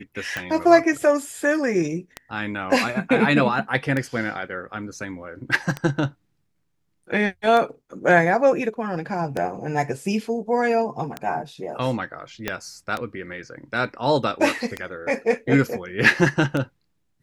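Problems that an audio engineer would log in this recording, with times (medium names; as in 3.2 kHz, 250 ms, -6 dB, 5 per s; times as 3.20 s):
tick 33 1/3 rpm -12 dBFS
12.48 s: pop -9 dBFS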